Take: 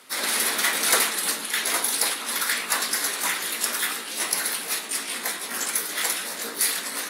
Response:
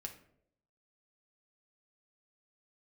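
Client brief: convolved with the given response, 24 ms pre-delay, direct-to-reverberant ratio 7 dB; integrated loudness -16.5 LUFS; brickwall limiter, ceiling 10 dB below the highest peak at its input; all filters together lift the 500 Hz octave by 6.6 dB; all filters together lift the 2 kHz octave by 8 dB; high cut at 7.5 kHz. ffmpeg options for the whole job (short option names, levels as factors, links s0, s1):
-filter_complex "[0:a]lowpass=7500,equalizer=f=500:t=o:g=7.5,equalizer=f=2000:t=o:g=9,alimiter=limit=0.237:level=0:latency=1,asplit=2[s0][s1];[1:a]atrim=start_sample=2205,adelay=24[s2];[s1][s2]afir=irnorm=-1:irlink=0,volume=0.668[s3];[s0][s3]amix=inputs=2:normalize=0,volume=1.88"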